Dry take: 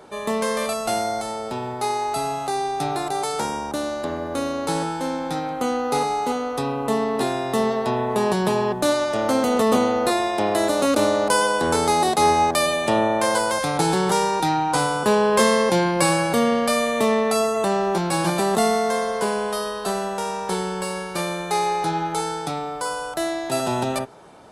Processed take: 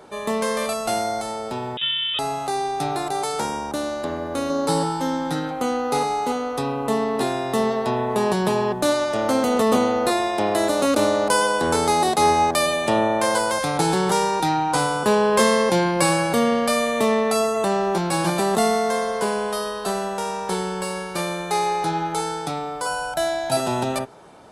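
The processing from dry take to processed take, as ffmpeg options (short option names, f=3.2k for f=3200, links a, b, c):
-filter_complex "[0:a]asettb=1/sr,asplit=3[a][b][c];[a]atrim=end=1.774[d];[b]atrim=start=1.77:end=2.19,asetpts=PTS-STARTPTS,afade=t=in:d=0.004:c=qsin,afade=t=out:st=0.416:d=0.004:c=qsin,lowpass=f=3.3k:t=q:w=0.5098,lowpass=f=3.3k:t=q:w=0.6013,lowpass=f=3.3k:t=q:w=0.9,lowpass=f=3.3k:t=q:w=2.563,afreqshift=-3900[e];[c]atrim=start=2.186[f];[d][e]acrossfade=d=0.004:c1=hsin:c2=qsin[g];[g][f]acrossfade=d=0.004:c1=qsin:c2=hsin,asettb=1/sr,asplit=3[h][i][j];[h]atrim=end=4.494[k];[i]atrim=start=4.49:end=5.51,asetpts=PTS-STARTPTS,afade=t=in:d=0.004:c=qsin,afade=t=out:st=1.016:d=0.004:c=qsin,aecho=1:1:7:0.75,atrim=end_sample=44982[l];[j]atrim=start=5.506[m];[k][l]acrossfade=d=0.004:c1=hsin:c2=qsin[n];[n][m]acrossfade=d=0.004:c1=qsin:c2=hsin,asettb=1/sr,asplit=3[o][p][q];[o]atrim=end=22.864[r];[p]atrim=start=22.86:end=23.57,asetpts=PTS-STARTPTS,afade=t=in:d=0.004:c=qsin,afade=t=out:st=0.706:d=0.004:c=qsin,aecho=1:1:1.3:0.75,atrim=end_sample=31311[s];[q]atrim=start=23.566[t];[r][s]acrossfade=d=0.004:c1=hsin:c2=qsin[u];[u][t]acrossfade=d=0.004:c1=qsin:c2=hsin"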